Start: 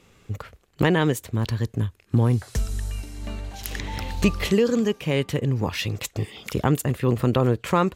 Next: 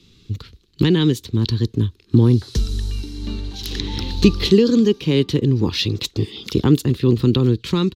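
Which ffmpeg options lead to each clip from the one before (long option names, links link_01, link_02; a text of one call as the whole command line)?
ffmpeg -i in.wav -filter_complex "[0:a]firequalizer=gain_entry='entry(350,0);entry(620,-25);entry(910,-15);entry(2100,-10);entry(3900,9);entry(7600,-9)':delay=0.05:min_phase=1,acrossover=split=330|1300[link_01][link_02][link_03];[link_02]dynaudnorm=framelen=290:gausssize=9:maxgain=10dB[link_04];[link_01][link_04][link_03]amix=inputs=3:normalize=0,volume=5dB" out.wav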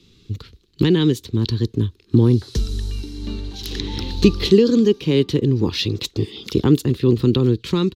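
ffmpeg -i in.wav -af "equalizer=frequency=400:width=1.5:gain=3,volume=-1.5dB" out.wav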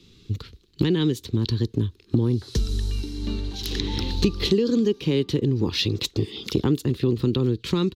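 ffmpeg -i in.wav -af "acompressor=threshold=-19dB:ratio=3" out.wav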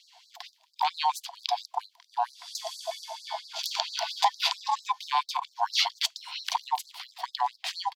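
ffmpeg -i in.wav -af "aeval=exprs='val(0)*sin(2*PI*610*n/s)':channel_layout=same,afftfilt=real='re*gte(b*sr/1024,630*pow(4000/630,0.5+0.5*sin(2*PI*4.4*pts/sr)))':imag='im*gte(b*sr/1024,630*pow(4000/630,0.5+0.5*sin(2*PI*4.4*pts/sr)))':win_size=1024:overlap=0.75,volume=3.5dB" out.wav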